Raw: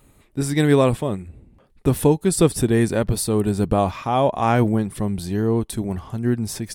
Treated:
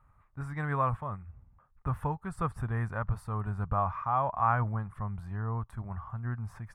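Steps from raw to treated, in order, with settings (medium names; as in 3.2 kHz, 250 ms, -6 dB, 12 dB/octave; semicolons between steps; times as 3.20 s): FFT filter 110 Hz 0 dB, 350 Hz -21 dB, 1.2 kHz +8 dB, 3.8 kHz -25 dB; trim -7.5 dB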